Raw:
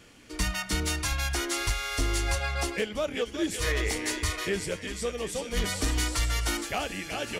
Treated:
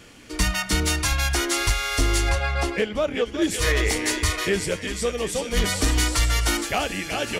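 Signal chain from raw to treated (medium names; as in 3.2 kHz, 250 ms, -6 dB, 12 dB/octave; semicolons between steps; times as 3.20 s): 2.29–3.42 s: treble shelf 4.6 kHz -10.5 dB; trim +6.5 dB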